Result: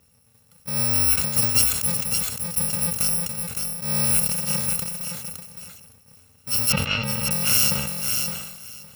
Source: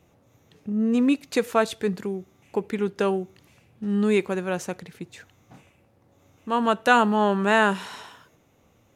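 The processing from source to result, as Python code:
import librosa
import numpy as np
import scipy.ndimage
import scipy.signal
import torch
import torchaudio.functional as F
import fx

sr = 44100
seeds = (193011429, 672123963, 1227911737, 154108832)

y = fx.bit_reversed(x, sr, seeds[0], block=128)
y = fx.lowpass(y, sr, hz=3400.0, slope=24, at=(6.72, 7.31))
y = fx.echo_feedback(y, sr, ms=563, feedback_pct=16, wet_db=-5.5)
y = fx.sustainer(y, sr, db_per_s=49.0)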